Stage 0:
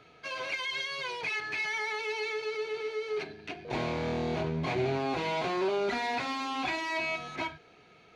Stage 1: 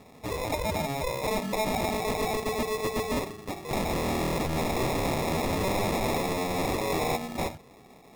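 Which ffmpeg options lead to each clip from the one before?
ffmpeg -i in.wav -filter_complex "[0:a]acrossover=split=3100[link_01][link_02];[link_01]aeval=exprs='(mod(25.1*val(0)+1,2)-1)/25.1':channel_layout=same[link_03];[link_03][link_02]amix=inputs=2:normalize=0,acrusher=samples=29:mix=1:aa=0.000001,volume=5.5dB" out.wav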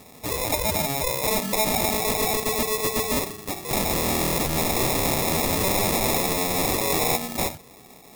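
ffmpeg -i in.wav -af "crystalizer=i=2.5:c=0,volume=2.5dB" out.wav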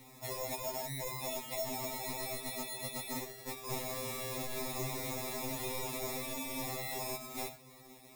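ffmpeg -i in.wav -af "acompressor=threshold=-29dB:ratio=2.5,aeval=exprs='0.376*(cos(1*acos(clip(val(0)/0.376,-1,1)))-cos(1*PI/2))+0.00841*(cos(4*acos(clip(val(0)/0.376,-1,1)))-cos(4*PI/2))':channel_layout=same,afftfilt=real='re*2.45*eq(mod(b,6),0)':imag='im*2.45*eq(mod(b,6),0)':win_size=2048:overlap=0.75,volume=-6dB" out.wav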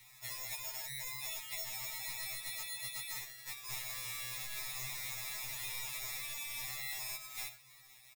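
ffmpeg -i in.wav -af "firequalizer=gain_entry='entry(110,0);entry(200,-26);entry(770,-8);entry(1600,7);entry(9300,5)':delay=0.05:min_phase=1,volume=-5.5dB" out.wav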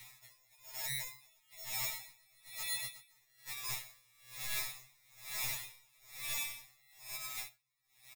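ffmpeg -i in.wav -af "aeval=exprs='val(0)*pow(10,-33*(0.5-0.5*cos(2*PI*1.1*n/s))/20)':channel_layout=same,volume=6dB" out.wav

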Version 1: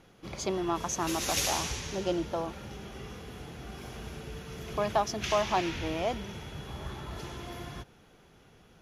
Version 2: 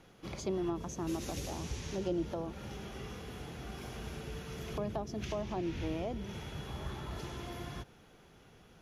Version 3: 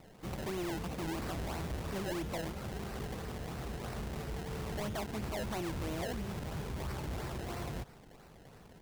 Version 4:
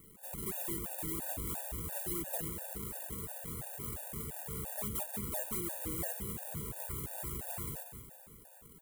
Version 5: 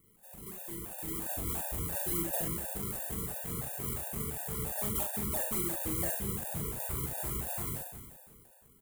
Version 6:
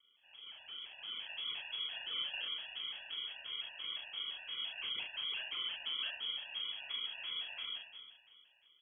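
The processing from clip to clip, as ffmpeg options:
ffmpeg -i in.wav -filter_complex "[0:a]acrossover=split=470[link_01][link_02];[link_02]acompressor=threshold=-43dB:ratio=8[link_03];[link_01][link_03]amix=inputs=2:normalize=0,volume=-1dB" out.wav
ffmpeg -i in.wav -af "equalizer=frequency=310:width_type=o:width=0.77:gain=-4,acrusher=samples=26:mix=1:aa=0.000001:lfo=1:lforange=26:lforate=3,asoftclip=type=hard:threshold=-39dB,volume=4.5dB" out.wav
ffmpeg -i in.wav -af "aexciter=amount=9.6:drive=4.7:freq=7600,aecho=1:1:186|372|558|744|930|1116:0.335|0.171|0.0871|0.0444|0.0227|0.0116,afftfilt=real='re*gt(sin(2*PI*2.9*pts/sr)*(1-2*mod(floor(b*sr/1024/480),2)),0)':imag='im*gt(sin(2*PI*2.9*pts/sr)*(1-2*mod(floor(b*sr/1024/480),2)),0)':win_size=1024:overlap=0.75,volume=-3dB" out.wav
ffmpeg -i in.wav -filter_complex "[0:a]dynaudnorm=framelen=320:gausssize=7:maxgain=11.5dB,asplit=2[link_01][link_02];[link_02]aecho=0:1:41|71:0.562|0.473[link_03];[link_01][link_03]amix=inputs=2:normalize=0,volume=-8.5dB" out.wav
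ffmpeg -i in.wav -af "lowpass=frequency=2900:width_type=q:width=0.5098,lowpass=frequency=2900:width_type=q:width=0.6013,lowpass=frequency=2900:width_type=q:width=0.9,lowpass=frequency=2900:width_type=q:width=2.563,afreqshift=-3400,volume=-3dB" out.wav

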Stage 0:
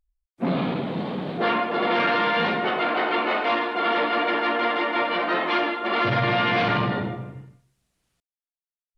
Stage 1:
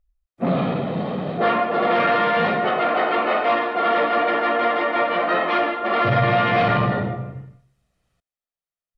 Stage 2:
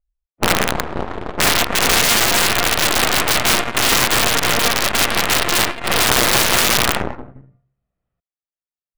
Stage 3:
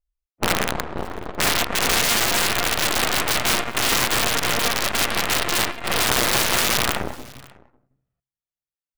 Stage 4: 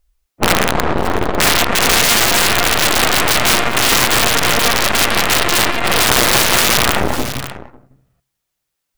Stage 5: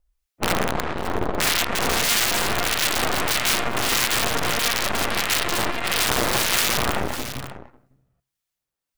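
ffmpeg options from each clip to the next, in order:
ffmpeg -i in.wav -af "highshelf=frequency=3000:gain=-10.5,aecho=1:1:1.6:0.38,volume=4dB" out.wav
ffmpeg -i in.wav -af "aeval=exprs='0.447*(cos(1*acos(clip(val(0)/0.447,-1,1)))-cos(1*PI/2))+0.158*(cos(4*acos(clip(val(0)/0.447,-1,1)))-cos(4*PI/2))+0.0794*(cos(7*acos(clip(val(0)/0.447,-1,1)))-cos(7*PI/2))':channel_layout=same,adynamicsmooth=sensitivity=5.5:basefreq=2000,aeval=exprs='(mod(2.82*val(0)+1,2)-1)/2.82':channel_layout=same,volume=5dB" out.wav
ffmpeg -i in.wav -af "aecho=1:1:550:0.0668,volume=-5dB" out.wav
ffmpeg -i in.wav -af "alimiter=level_in=19.5dB:limit=-1dB:release=50:level=0:latency=1,volume=-1dB" out.wav
ffmpeg -i in.wav -filter_complex "[0:a]acrossover=split=1400[link_01][link_02];[link_01]aeval=exprs='val(0)*(1-0.5/2+0.5/2*cos(2*PI*1.6*n/s))':channel_layout=same[link_03];[link_02]aeval=exprs='val(0)*(1-0.5/2-0.5/2*cos(2*PI*1.6*n/s))':channel_layout=same[link_04];[link_03][link_04]amix=inputs=2:normalize=0,volume=-6.5dB" out.wav

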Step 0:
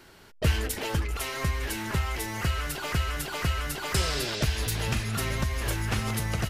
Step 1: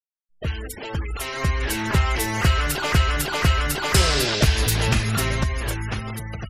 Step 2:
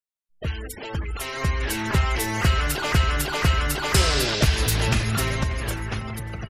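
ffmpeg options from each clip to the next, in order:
ffmpeg -i in.wav -af "dynaudnorm=framelen=300:gausssize=9:maxgain=15dB,afftfilt=real='re*gte(hypot(re,im),0.0282)':imag='im*gte(hypot(re,im),0.0282)':win_size=1024:overlap=0.75,volume=-3.5dB" out.wav
ffmpeg -i in.wav -filter_complex "[0:a]asplit=2[link_01][link_02];[link_02]adelay=588,lowpass=frequency=2500:poles=1,volume=-14.5dB,asplit=2[link_03][link_04];[link_04]adelay=588,lowpass=frequency=2500:poles=1,volume=0.44,asplit=2[link_05][link_06];[link_06]adelay=588,lowpass=frequency=2500:poles=1,volume=0.44,asplit=2[link_07][link_08];[link_08]adelay=588,lowpass=frequency=2500:poles=1,volume=0.44[link_09];[link_01][link_03][link_05][link_07][link_09]amix=inputs=5:normalize=0,volume=-1.5dB" out.wav

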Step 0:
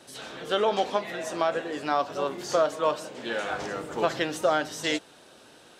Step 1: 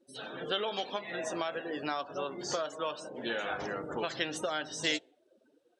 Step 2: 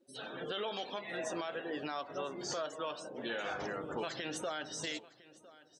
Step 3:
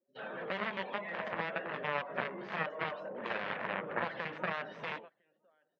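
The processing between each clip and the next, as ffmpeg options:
ffmpeg -i in.wav -filter_complex "[0:a]afftdn=noise_reduction=30:noise_floor=-42,acrossover=split=2100[link_01][link_02];[link_01]acompressor=threshold=-33dB:ratio=6[link_03];[link_03][link_02]amix=inputs=2:normalize=0" out.wav
ffmpeg -i in.wav -af "alimiter=level_in=2.5dB:limit=-24dB:level=0:latency=1:release=23,volume=-2.5dB,aecho=1:1:1006:0.1,volume=-2dB" out.wav
ffmpeg -i in.wav -af "agate=range=-18dB:threshold=-50dB:ratio=16:detection=peak,aeval=exprs='0.0422*(cos(1*acos(clip(val(0)/0.0422,-1,1)))-cos(1*PI/2))+0.0211*(cos(3*acos(clip(val(0)/0.0422,-1,1)))-cos(3*PI/2))':channel_layout=same,highpass=170,equalizer=frequency=190:width_type=q:width=4:gain=8,equalizer=frequency=290:width_type=q:width=4:gain=-7,equalizer=frequency=570:width_type=q:width=4:gain=6,equalizer=frequency=1000:width_type=q:width=4:gain=4,equalizer=frequency=1800:width_type=q:width=4:gain=5,lowpass=frequency=2600:width=0.5412,lowpass=frequency=2600:width=1.3066,volume=8.5dB" out.wav

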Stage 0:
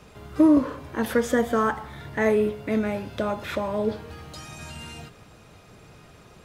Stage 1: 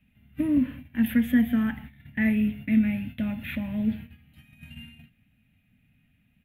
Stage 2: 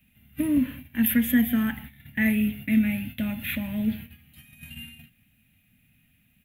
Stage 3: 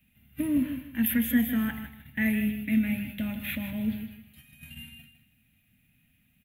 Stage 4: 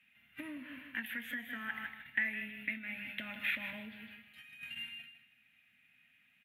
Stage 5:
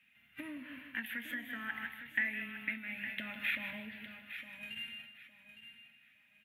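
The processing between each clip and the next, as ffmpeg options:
ffmpeg -i in.wav -af "agate=range=-15dB:threshold=-37dB:ratio=16:detection=peak,firequalizer=gain_entry='entry(160,0);entry(250,6);entry(360,-25);entry(720,-15);entry(1100,-24);entry(1800,-2);entry(2700,2);entry(5100,-29);entry(7700,-22);entry(12000,2)':delay=0.05:min_phase=1,volume=1dB" out.wav
ffmpeg -i in.wav -af "crystalizer=i=3.5:c=0" out.wav
ffmpeg -i in.wav -af "aecho=1:1:156|312|468:0.316|0.0759|0.0182,volume=-3.5dB" out.wav
ffmpeg -i in.wav -af "acompressor=threshold=-33dB:ratio=8,bandpass=frequency=1800:width_type=q:width=1.3:csg=0,volume=7dB" out.wav
ffmpeg -i in.wav -af "aecho=1:1:860|1720|2580:0.282|0.0705|0.0176" out.wav

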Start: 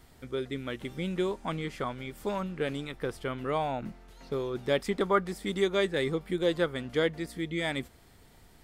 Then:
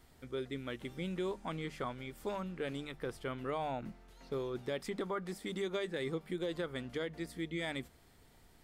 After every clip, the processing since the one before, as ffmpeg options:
ffmpeg -i in.wav -af "alimiter=limit=-22.5dB:level=0:latency=1:release=72,bandreject=frequency=50:width_type=h:width=6,bandreject=frequency=100:width_type=h:width=6,bandreject=frequency=150:width_type=h:width=6,bandreject=frequency=200:width_type=h:width=6,volume=-5.5dB" out.wav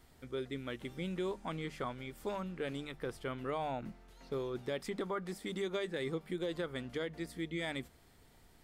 ffmpeg -i in.wav -af anull out.wav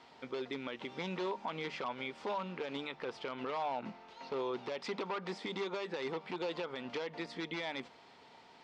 ffmpeg -i in.wav -af "aeval=exprs='0.0251*(abs(mod(val(0)/0.0251+3,4)-2)-1)':channel_layout=same,highpass=290,equalizer=frequency=330:width_type=q:width=4:gain=-5,equalizer=frequency=920:width_type=q:width=4:gain=8,equalizer=frequency=1700:width_type=q:width=4:gain=-3,equalizer=frequency=2600:width_type=q:width=4:gain=3,lowpass=frequency=5200:width=0.5412,lowpass=frequency=5200:width=1.3066,alimiter=level_in=12.5dB:limit=-24dB:level=0:latency=1:release=100,volume=-12.5dB,volume=8dB" out.wav

